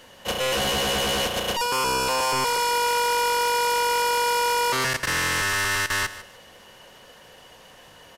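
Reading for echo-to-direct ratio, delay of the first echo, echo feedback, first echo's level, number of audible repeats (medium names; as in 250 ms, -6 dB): -14.5 dB, 152 ms, 24%, -15.0 dB, 2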